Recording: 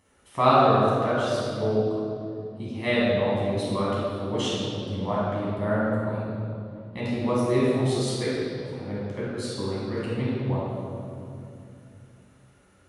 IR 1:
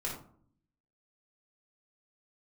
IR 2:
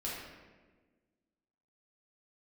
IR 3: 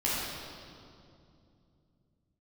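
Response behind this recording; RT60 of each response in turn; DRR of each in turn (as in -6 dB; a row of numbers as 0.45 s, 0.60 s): 3; 0.55 s, 1.4 s, 2.6 s; -4.0 dB, -7.0 dB, -8.5 dB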